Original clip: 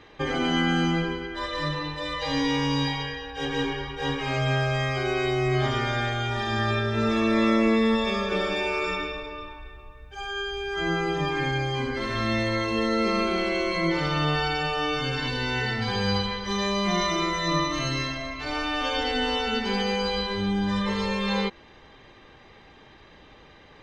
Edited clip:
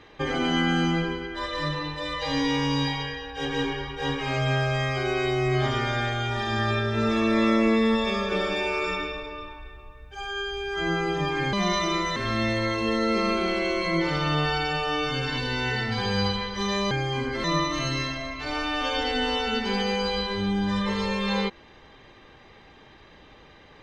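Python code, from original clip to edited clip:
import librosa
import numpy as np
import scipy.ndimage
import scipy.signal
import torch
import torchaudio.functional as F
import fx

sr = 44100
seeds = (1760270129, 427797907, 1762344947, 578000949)

y = fx.edit(x, sr, fx.swap(start_s=11.53, length_s=0.53, other_s=16.81, other_length_s=0.63), tone=tone)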